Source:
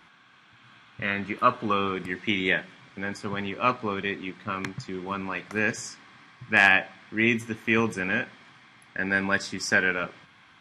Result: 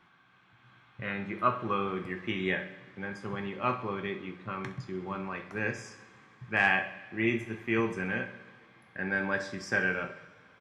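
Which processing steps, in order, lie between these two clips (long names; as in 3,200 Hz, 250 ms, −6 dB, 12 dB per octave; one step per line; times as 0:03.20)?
high-shelf EQ 2,900 Hz −10.5 dB
repeating echo 65 ms, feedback 57%, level −15.5 dB
coupled-rooms reverb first 0.4 s, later 2.9 s, from −22 dB, DRR 5 dB
level −5.5 dB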